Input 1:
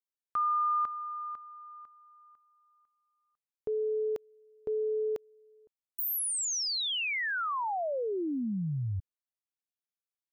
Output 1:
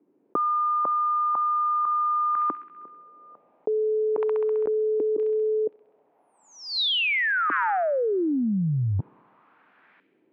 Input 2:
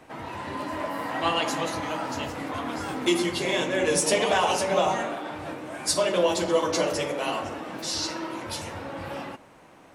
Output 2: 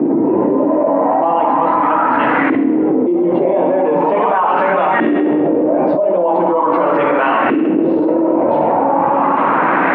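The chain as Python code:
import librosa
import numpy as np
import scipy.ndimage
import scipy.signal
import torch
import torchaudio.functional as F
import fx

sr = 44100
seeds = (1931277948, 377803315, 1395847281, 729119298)

p1 = fx.rider(x, sr, range_db=4, speed_s=2.0)
p2 = fx.filter_lfo_lowpass(p1, sr, shape='saw_up', hz=0.4, low_hz=320.0, high_hz=1800.0, q=2.9)
p3 = fx.cabinet(p2, sr, low_hz=170.0, low_slope=24, high_hz=3400.0, hz=(290.0, 930.0, 2400.0), db=(4, 4, 4))
p4 = p3 + fx.echo_wet_highpass(p3, sr, ms=66, feedback_pct=70, hz=2600.0, wet_db=-8, dry=0)
p5 = fx.env_flatten(p4, sr, amount_pct=100)
y = F.gain(torch.from_numpy(p5), -2.0).numpy()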